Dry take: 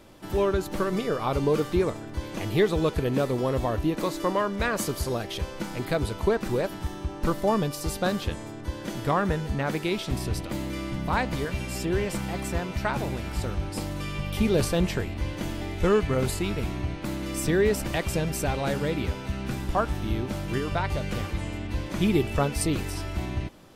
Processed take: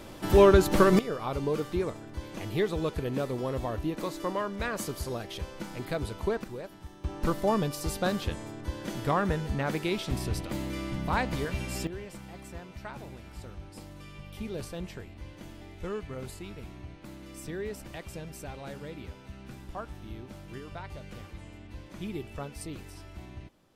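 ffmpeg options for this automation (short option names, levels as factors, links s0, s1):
-af "asetnsamples=n=441:p=0,asendcmd='0.99 volume volume -6dB;6.44 volume volume -13.5dB;7.04 volume volume -2.5dB;11.87 volume volume -14dB',volume=2.11"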